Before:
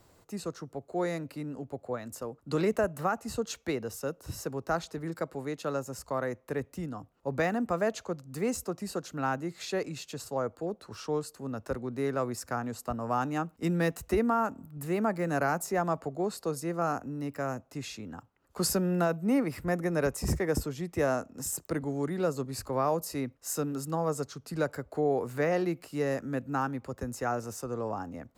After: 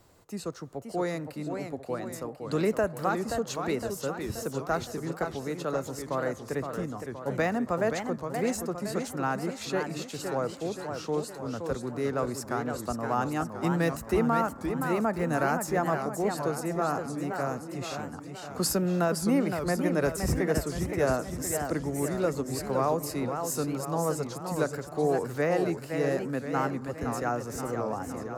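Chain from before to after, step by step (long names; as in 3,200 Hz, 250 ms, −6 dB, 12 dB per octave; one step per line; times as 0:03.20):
on a send at −18.5 dB: linear-phase brick-wall band-pass 520–2,300 Hz + convolution reverb RT60 1.9 s, pre-delay 3 ms
on the sum: feedback echo with a swinging delay time 520 ms, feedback 55%, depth 214 cents, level −6.5 dB
level +1 dB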